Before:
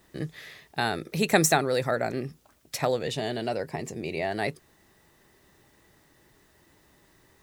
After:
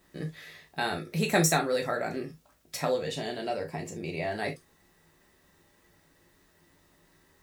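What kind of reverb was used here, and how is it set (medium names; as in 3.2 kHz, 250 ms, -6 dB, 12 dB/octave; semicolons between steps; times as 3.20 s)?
gated-style reverb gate 90 ms falling, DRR 1 dB; trim -5 dB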